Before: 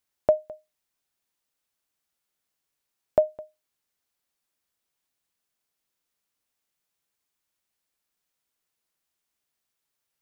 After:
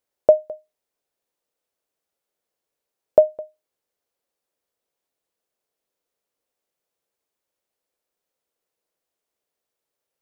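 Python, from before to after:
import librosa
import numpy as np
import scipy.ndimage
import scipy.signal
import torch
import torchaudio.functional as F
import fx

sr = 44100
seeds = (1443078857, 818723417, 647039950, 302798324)

y = fx.peak_eq(x, sr, hz=500.0, db=13.5, octaves=1.3)
y = F.gain(torch.from_numpy(y), -3.5).numpy()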